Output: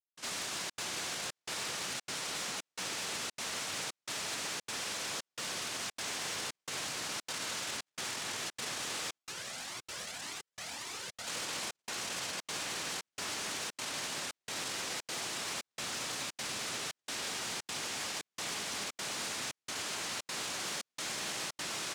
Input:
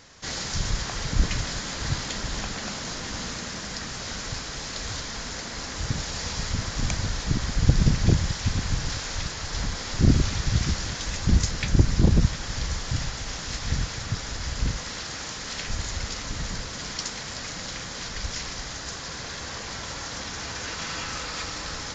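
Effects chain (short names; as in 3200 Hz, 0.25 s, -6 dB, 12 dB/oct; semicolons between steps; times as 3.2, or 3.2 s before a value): notches 50/100/150 Hz; doubler 48 ms -7 dB; noise vocoder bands 1; compressor 5:1, threshold -27 dBFS, peak gain reduction 12.5 dB; tape echo 0.208 s, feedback 74%, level -5 dB, low-pass 5200 Hz; step gate "..xxxxxx.xxxxxx" 173 bpm -60 dB; limiter -27 dBFS, peak gain reduction 13 dB; soft clip -31 dBFS, distortion -18 dB; 9.18–11.27 cascading flanger rising 1.8 Hz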